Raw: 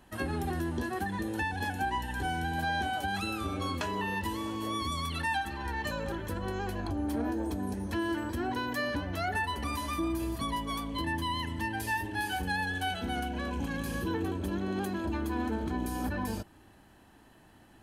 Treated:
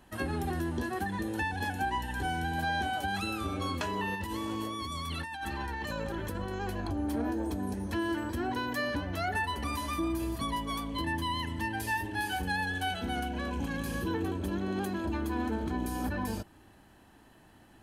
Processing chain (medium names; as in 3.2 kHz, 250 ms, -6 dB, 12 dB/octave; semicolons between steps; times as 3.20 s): 4.15–6.61 s: compressor with a negative ratio -36 dBFS, ratio -1